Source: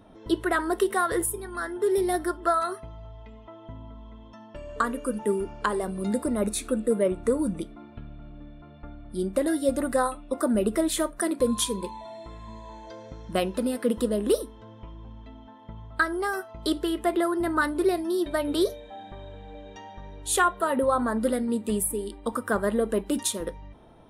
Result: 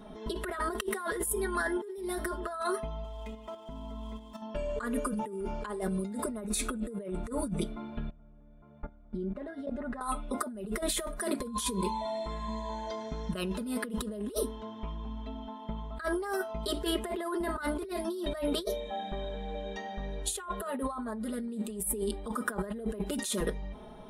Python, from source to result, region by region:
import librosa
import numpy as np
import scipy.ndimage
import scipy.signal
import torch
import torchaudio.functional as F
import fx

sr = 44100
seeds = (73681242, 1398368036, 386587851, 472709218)

y = fx.chain(x, sr, fx.median_filter(points=9),
    fx.high_shelf(hz=2600.0, db=8.0),
    fx.level_steps(step_db=9), at=(3.04, 4.42))
y = fx.chain(y, sr, fx.level_steps(step_db=20),
    fx.lowpass(hz=1900.0, slope=12), at=(8.1, 10.01))
y = y + 0.99 * np.pad(y, (int(4.8 * sr / 1000.0), 0))[:len(y)]
y = fx.over_compress(y, sr, threshold_db=-30.0, ratio=-1.0)
y = y * 10.0 ** (-4.0 / 20.0)